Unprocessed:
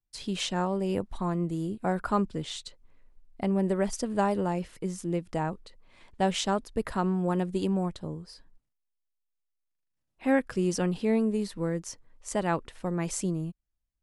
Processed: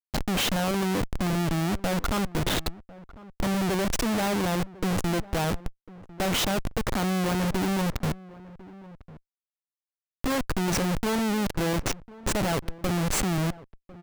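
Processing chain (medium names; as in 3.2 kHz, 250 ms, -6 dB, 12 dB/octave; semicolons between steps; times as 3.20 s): Schmitt trigger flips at -35.5 dBFS; echo from a far wall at 180 m, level -19 dB; trim +5.5 dB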